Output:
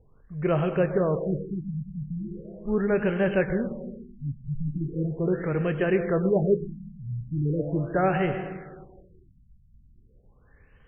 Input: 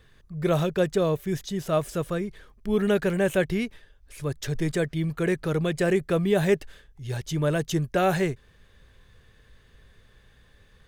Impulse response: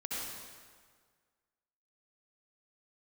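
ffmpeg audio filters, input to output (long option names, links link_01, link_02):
-filter_complex "[0:a]asplit=2[link_01][link_02];[1:a]atrim=start_sample=2205,adelay=27[link_03];[link_02][link_03]afir=irnorm=-1:irlink=0,volume=-9dB[link_04];[link_01][link_04]amix=inputs=2:normalize=0,afftfilt=real='re*lt(b*sr/1024,230*pow(3300/230,0.5+0.5*sin(2*PI*0.39*pts/sr)))':imag='im*lt(b*sr/1024,230*pow(3300/230,0.5+0.5*sin(2*PI*0.39*pts/sr)))':win_size=1024:overlap=0.75,volume=-1dB"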